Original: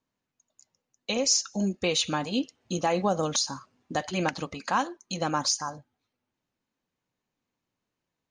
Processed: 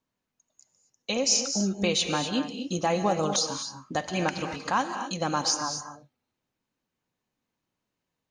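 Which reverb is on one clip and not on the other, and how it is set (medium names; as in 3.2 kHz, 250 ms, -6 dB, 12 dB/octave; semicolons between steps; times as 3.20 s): gated-style reverb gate 280 ms rising, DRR 7 dB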